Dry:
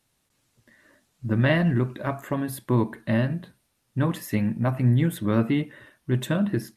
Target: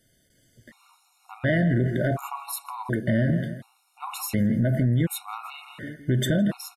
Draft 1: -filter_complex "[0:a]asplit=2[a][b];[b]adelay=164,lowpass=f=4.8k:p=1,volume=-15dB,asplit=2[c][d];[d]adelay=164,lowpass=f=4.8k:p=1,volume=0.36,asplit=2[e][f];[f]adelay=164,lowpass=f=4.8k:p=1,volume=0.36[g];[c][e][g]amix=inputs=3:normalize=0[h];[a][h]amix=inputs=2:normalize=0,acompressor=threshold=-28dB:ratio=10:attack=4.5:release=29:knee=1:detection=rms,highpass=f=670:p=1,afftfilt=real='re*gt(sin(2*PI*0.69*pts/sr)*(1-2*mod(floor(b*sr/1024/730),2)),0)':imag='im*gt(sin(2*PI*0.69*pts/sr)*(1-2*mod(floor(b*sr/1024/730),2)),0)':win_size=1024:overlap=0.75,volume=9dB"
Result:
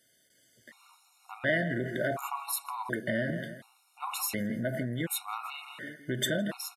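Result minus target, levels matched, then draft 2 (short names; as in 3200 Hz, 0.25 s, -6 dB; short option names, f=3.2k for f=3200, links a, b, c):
500 Hz band +3.5 dB
-filter_complex "[0:a]asplit=2[a][b];[b]adelay=164,lowpass=f=4.8k:p=1,volume=-15dB,asplit=2[c][d];[d]adelay=164,lowpass=f=4.8k:p=1,volume=0.36,asplit=2[e][f];[f]adelay=164,lowpass=f=4.8k:p=1,volume=0.36[g];[c][e][g]amix=inputs=3:normalize=0[h];[a][h]amix=inputs=2:normalize=0,acompressor=threshold=-28dB:ratio=10:attack=4.5:release=29:knee=1:detection=rms,afftfilt=real='re*gt(sin(2*PI*0.69*pts/sr)*(1-2*mod(floor(b*sr/1024/730),2)),0)':imag='im*gt(sin(2*PI*0.69*pts/sr)*(1-2*mod(floor(b*sr/1024/730),2)),0)':win_size=1024:overlap=0.75,volume=9dB"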